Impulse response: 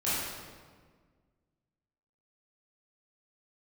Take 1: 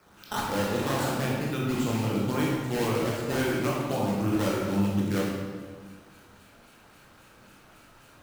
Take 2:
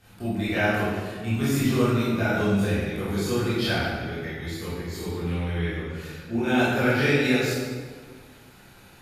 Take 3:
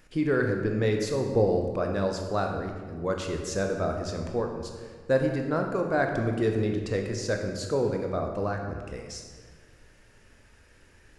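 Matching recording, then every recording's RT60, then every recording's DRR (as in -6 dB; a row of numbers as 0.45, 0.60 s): 2; 1.6, 1.6, 1.6 s; -5.0, -12.0, 2.5 dB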